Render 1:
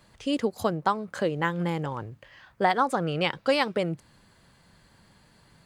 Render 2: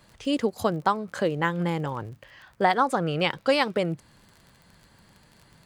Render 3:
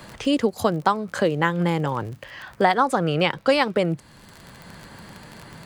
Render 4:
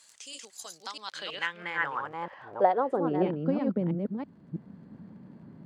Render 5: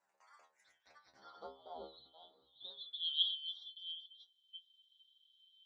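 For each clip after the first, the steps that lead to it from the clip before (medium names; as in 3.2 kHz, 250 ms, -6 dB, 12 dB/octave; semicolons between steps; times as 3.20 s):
crackle 31 per s -41 dBFS; trim +1.5 dB
three bands compressed up and down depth 40%; trim +4 dB
chunks repeated in reverse 326 ms, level -3 dB; band-pass sweep 7.3 kHz -> 220 Hz, 0.62–3.46 s
four frequency bands reordered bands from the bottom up 2413; band-pass sweep 810 Hz -> 6.9 kHz, 2.62–3.55 s; inharmonic resonator 65 Hz, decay 0.39 s, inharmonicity 0.002; trim +1 dB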